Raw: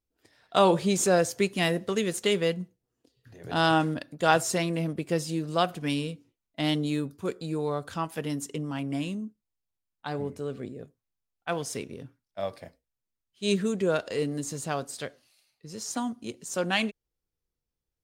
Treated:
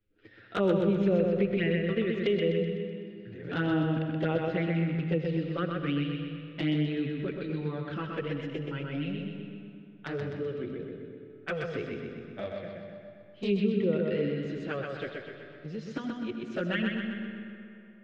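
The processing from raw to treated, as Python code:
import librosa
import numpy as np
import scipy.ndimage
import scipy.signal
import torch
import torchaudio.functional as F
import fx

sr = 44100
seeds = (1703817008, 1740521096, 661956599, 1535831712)

y = scipy.signal.sosfilt(scipy.signal.butter(4, 3100.0, 'lowpass', fs=sr, output='sos'), x)
y = fx.env_lowpass_down(y, sr, base_hz=1600.0, full_db=-20.0)
y = fx.band_shelf(y, sr, hz=840.0, db=-13.0, octaves=1.0)
y = fx.env_flanger(y, sr, rest_ms=9.7, full_db=-22.5)
y = fx.echo_feedback(y, sr, ms=126, feedback_pct=47, wet_db=-4.0)
y = fx.rev_freeverb(y, sr, rt60_s=2.0, hf_ratio=0.65, predelay_ms=40, drr_db=8.5)
y = fx.band_squash(y, sr, depth_pct=40)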